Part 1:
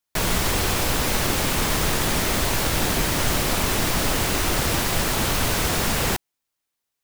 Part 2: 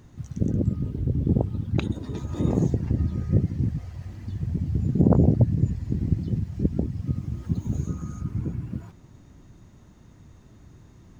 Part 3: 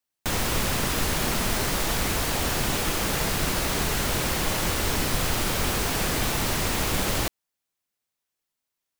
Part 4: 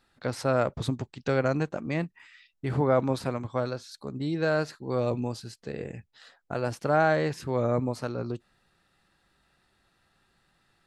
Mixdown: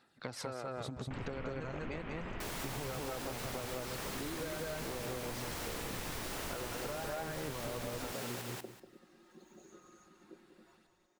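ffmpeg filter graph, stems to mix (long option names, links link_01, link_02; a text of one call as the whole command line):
ffmpeg -i stem1.wav -i stem2.wav -i stem3.wav -i stem4.wav -filter_complex "[0:a]highpass=250,adelay=2250,volume=-15.5dB,asplit=2[link_01][link_02];[link_02]volume=-3.5dB[link_03];[1:a]highpass=frequency=340:width=0.5412,highpass=frequency=340:width=1.3066,aecho=1:1:5.5:0.87,adelay=1850,volume=-16.5dB,asplit=2[link_04][link_05];[link_05]volume=-10dB[link_06];[2:a]afwtdn=0.0282,lowpass=frequency=3800:width=0.5412,lowpass=frequency=3800:width=1.3066,adelay=850,volume=-13.5dB[link_07];[3:a]aphaser=in_gain=1:out_gain=1:delay=2.5:decay=0.45:speed=0.82:type=sinusoidal,volume=-3.5dB,asplit=2[link_08][link_09];[link_09]volume=-7.5dB[link_10];[link_04][link_08]amix=inputs=2:normalize=0,highpass=150,acompressor=threshold=-33dB:ratio=6,volume=0dB[link_11];[link_03][link_06][link_10]amix=inputs=3:normalize=0,aecho=0:1:192|384|576:1|0.16|0.0256[link_12];[link_01][link_07][link_11][link_12]amix=inputs=4:normalize=0,acompressor=threshold=-37dB:ratio=6" out.wav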